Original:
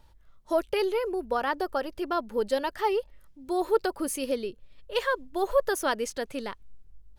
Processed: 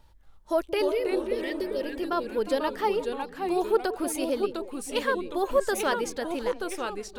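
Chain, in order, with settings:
healed spectral selection 0:00.85–0:01.83, 600–1,800 Hz after
delay with pitch and tempo change per echo 233 ms, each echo −2 semitones, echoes 2, each echo −6 dB
echo through a band-pass that steps 178 ms, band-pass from 310 Hz, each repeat 1.4 octaves, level −10.5 dB

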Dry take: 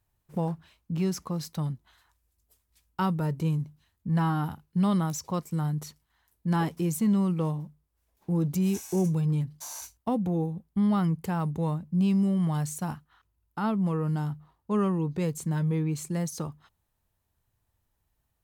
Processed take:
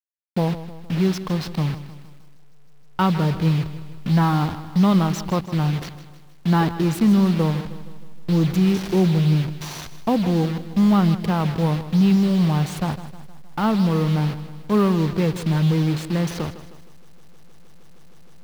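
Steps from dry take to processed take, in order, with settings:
hold until the input has moved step −35 dBFS
high shelf with overshoot 5,600 Hz −8 dB, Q 1.5
feedback echo at a low word length 156 ms, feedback 55%, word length 9 bits, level −13.5 dB
level +8 dB

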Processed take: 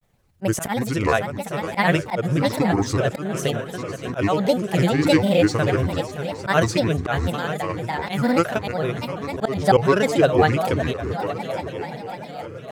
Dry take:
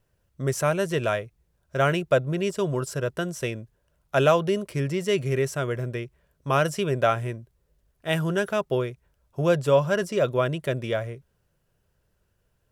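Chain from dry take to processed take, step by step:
echo machine with several playback heads 291 ms, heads second and third, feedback 57%, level −13 dB
volume swells 149 ms
granular cloud, spray 39 ms, pitch spread up and down by 7 semitones
level +7.5 dB

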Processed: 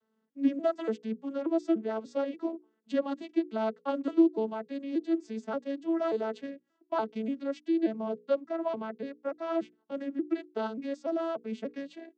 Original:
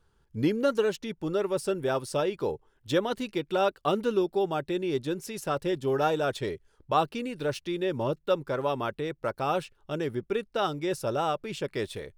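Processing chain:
vocoder with an arpeggio as carrier major triad, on A3, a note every 291 ms
mains-hum notches 60/120/180/240/300/360/420/480 Hz
level −1.5 dB

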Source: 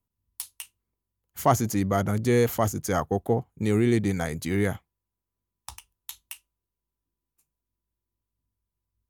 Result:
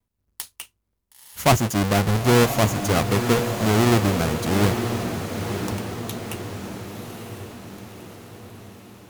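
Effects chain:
each half-wave held at its own peak
pitch vibrato 0.63 Hz 20 cents
feedback delay with all-pass diffusion 972 ms, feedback 56%, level −7 dB

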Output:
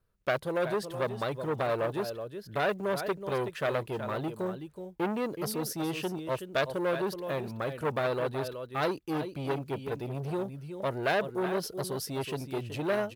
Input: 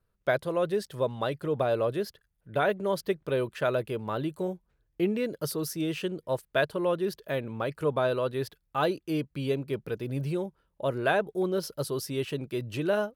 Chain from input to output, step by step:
one scale factor per block 7 bits
on a send: single-tap delay 374 ms −10.5 dB
on the sum: saturating transformer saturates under 1,600 Hz

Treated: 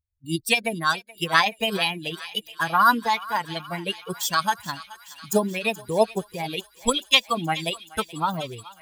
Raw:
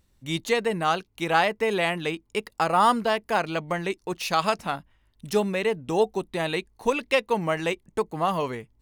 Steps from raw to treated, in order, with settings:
spectral dynamics exaggerated over time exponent 2
formants moved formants +4 semitones
high-shelf EQ 6,200 Hz +8.5 dB
feedback echo with a high-pass in the loop 426 ms, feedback 83%, high-pass 1,200 Hz, level −16 dB
level +5 dB

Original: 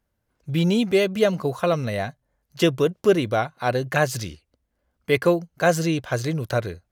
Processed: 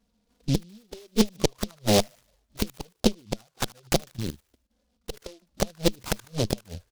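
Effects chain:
stylus tracing distortion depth 0.04 ms
gate with flip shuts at −15 dBFS, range −35 dB
downsampling to 8,000 Hz
in parallel at −2 dB: downward compressor 4 to 1, threshold −37 dBFS, peak gain reduction 13.5 dB
on the sum: parametric band 210 Hz +10.5 dB 0.23 octaves
delay with a high-pass on its return 75 ms, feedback 46%, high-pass 1,500 Hz, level −13 dB
harmonic generator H 6 −9 dB, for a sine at −9.5 dBFS
parametric band 540 Hz +3 dB 2.1 octaves
0:04.10–0:05.14: output level in coarse steps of 14 dB
flanger swept by the level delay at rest 4.3 ms, full sweep at −21 dBFS
short delay modulated by noise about 4,000 Hz, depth 0.14 ms

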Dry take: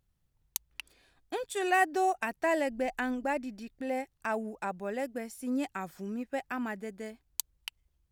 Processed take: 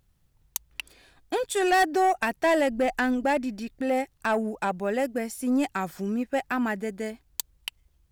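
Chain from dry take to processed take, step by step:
soft clipping −25 dBFS, distortion −13 dB
level +9 dB

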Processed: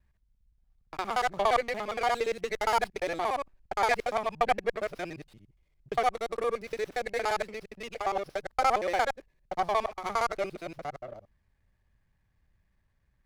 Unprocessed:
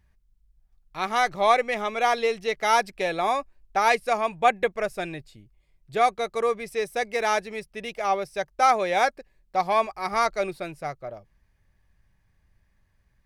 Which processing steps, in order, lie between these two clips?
reversed piece by piece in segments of 58 ms
windowed peak hold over 5 samples
level −5 dB

